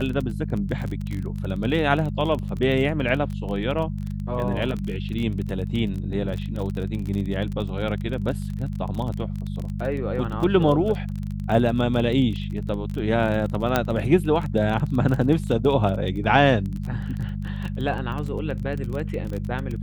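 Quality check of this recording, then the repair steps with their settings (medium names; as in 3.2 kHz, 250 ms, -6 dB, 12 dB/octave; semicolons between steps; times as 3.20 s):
crackle 24 per s -28 dBFS
hum 50 Hz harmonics 4 -29 dBFS
13.76 s: pop -6 dBFS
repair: de-click; de-hum 50 Hz, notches 4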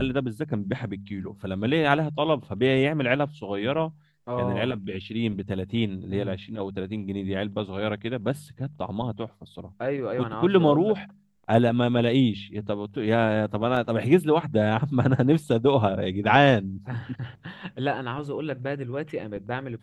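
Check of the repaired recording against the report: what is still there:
13.76 s: pop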